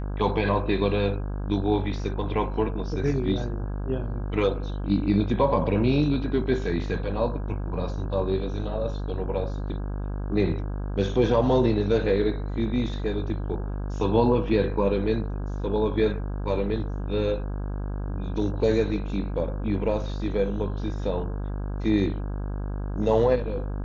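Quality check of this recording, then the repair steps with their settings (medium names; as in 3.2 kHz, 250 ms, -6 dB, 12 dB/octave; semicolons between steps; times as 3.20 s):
buzz 50 Hz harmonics 33 -30 dBFS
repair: de-hum 50 Hz, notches 33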